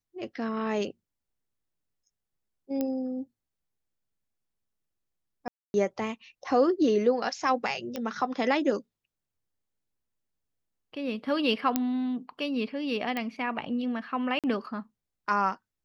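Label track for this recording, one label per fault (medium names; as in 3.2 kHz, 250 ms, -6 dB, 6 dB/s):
2.810000	2.810000	pop -17 dBFS
5.480000	5.740000	dropout 261 ms
7.960000	7.960000	pop -18 dBFS
11.760000	11.760000	pop -10 dBFS
13.170000	13.170000	pop -18 dBFS
14.390000	14.440000	dropout 47 ms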